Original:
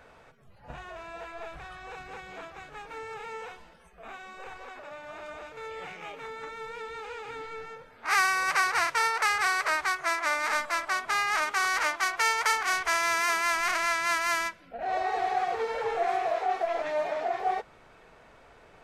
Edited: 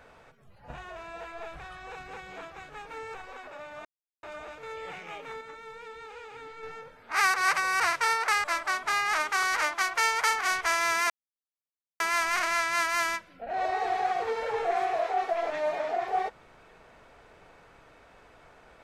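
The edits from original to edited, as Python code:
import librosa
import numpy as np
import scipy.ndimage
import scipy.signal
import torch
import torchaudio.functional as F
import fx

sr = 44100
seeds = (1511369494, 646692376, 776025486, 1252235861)

y = fx.edit(x, sr, fx.cut(start_s=3.14, length_s=1.32),
    fx.insert_silence(at_s=5.17, length_s=0.38),
    fx.clip_gain(start_s=6.35, length_s=1.22, db=-5.0),
    fx.reverse_span(start_s=8.28, length_s=0.46),
    fx.cut(start_s=9.38, length_s=1.28),
    fx.insert_silence(at_s=13.32, length_s=0.9), tone=tone)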